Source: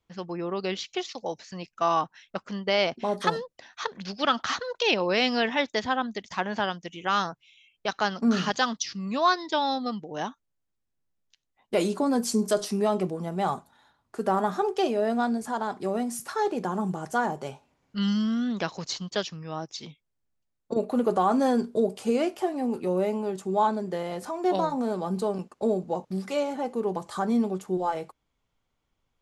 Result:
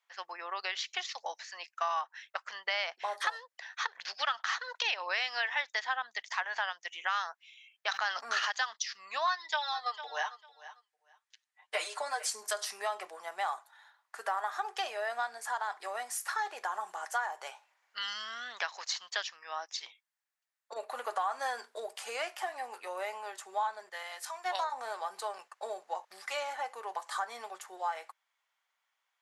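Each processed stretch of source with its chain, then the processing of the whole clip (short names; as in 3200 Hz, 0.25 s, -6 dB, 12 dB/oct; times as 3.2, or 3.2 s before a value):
7.88–8.51 notches 50/100/150/200/250 Hz + sustainer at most 28 dB/s
9.27–12.3 Chebyshev band-pass 390–9800 Hz, order 3 + comb 6.6 ms, depth 93% + feedback echo 0.448 s, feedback 17%, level -19 dB
23.89–24.64 tilt shelf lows -4 dB, about 710 Hz + three-band expander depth 100%
whole clip: HPF 770 Hz 24 dB/oct; bell 1800 Hz +7.5 dB 0.52 oct; compressor 3:1, threshold -31 dBFS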